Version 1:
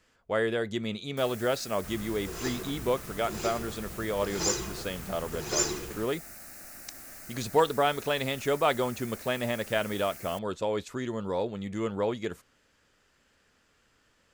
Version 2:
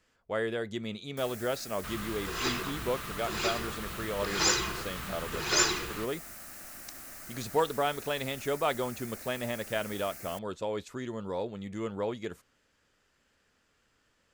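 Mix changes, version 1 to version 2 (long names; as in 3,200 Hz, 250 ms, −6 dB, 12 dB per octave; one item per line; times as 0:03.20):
speech −4.0 dB
second sound: add flat-topped bell 2,100 Hz +9.5 dB 2.5 octaves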